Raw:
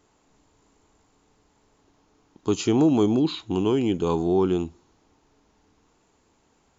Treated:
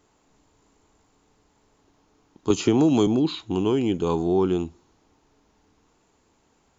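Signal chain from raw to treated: 2.5–3.07 three-band squash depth 100%

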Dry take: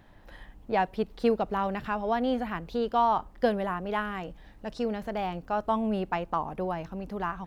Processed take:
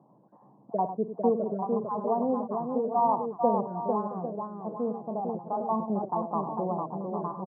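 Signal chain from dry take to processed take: random spectral dropouts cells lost 26%; Chebyshev band-pass 130–1100 Hz, order 5; tapped delay 50/99/450/671/802 ms -14.5/-10.5/-4.5/-18.5/-10.5 dB

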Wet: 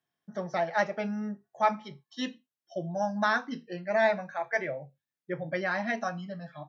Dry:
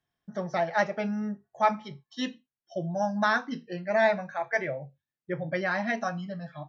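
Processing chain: HPF 150 Hz; gain -1.5 dB

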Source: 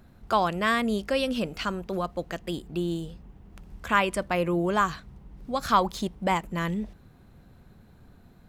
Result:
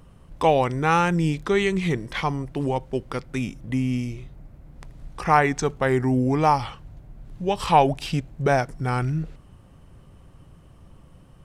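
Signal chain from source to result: speed mistake 45 rpm record played at 33 rpm; gain +4.5 dB

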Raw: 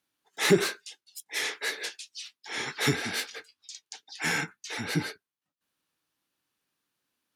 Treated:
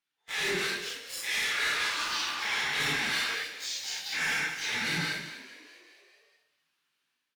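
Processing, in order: phase scrambler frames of 0.2 s; bell 2500 Hz +13 dB 2.8 oct; AGC gain up to 8.5 dB; sample leveller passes 3; compressor 2.5:1, threshold -29 dBFS, peak gain reduction 15 dB; frequency-shifting echo 0.207 s, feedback 63%, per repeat +47 Hz, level -16 dB; non-linear reverb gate 0.29 s flat, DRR 8 dB; 1.03–3.35 echoes that change speed 0.144 s, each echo -6 st, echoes 2, each echo -6 dB; gain -8.5 dB

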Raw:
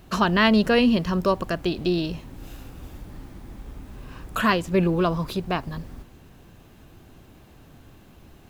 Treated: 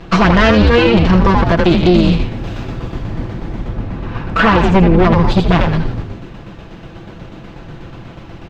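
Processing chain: minimum comb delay 6 ms; 3.68–4.59 high shelf 4700 Hz -7.5 dB; in parallel at -4 dB: soft clip -27 dBFS, distortion -7 dB; on the sum: air absorption 170 m; on a send: frequency-shifting echo 82 ms, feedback 39%, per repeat -140 Hz, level -3.5 dB; on the sum: tremolo saw down 8.2 Hz, depth 45%; maximiser +16.5 dB; gain -1 dB

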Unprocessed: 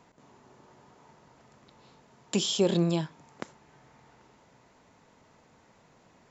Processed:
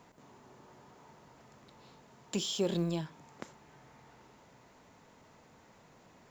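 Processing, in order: G.711 law mismatch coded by mu; gain -7.5 dB

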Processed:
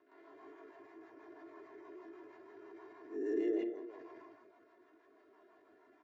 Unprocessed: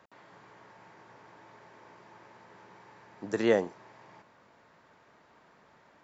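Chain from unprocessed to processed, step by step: spectral swells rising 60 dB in 0.50 s; speakerphone echo 0.38 s, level -26 dB; compressor 12:1, threshold -41 dBFS, peak gain reduction 23.5 dB; low shelf 200 Hz -12 dB; loudspeakers at several distances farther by 55 m -6 dB, 73 m -8 dB; rotary speaker horn 6.3 Hz; bell 360 Hz +7.5 dB 0.83 oct; transient shaper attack -5 dB, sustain +8 dB; comb 2.9 ms, depth 79%; spectral expander 1.5:1; gain +4.5 dB

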